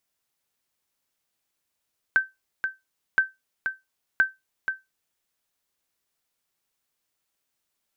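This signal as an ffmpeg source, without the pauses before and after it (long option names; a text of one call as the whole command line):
ffmpeg -f lavfi -i "aevalsrc='0.282*(sin(2*PI*1550*mod(t,1.02))*exp(-6.91*mod(t,1.02)/0.19)+0.422*sin(2*PI*1550*max(mod(t,1.02)-0.48,0))*exp(-6.91*max(mod(t,1.02)-0.48,0)/0.19))':duration=3.06:sample_rate=44100" out.wav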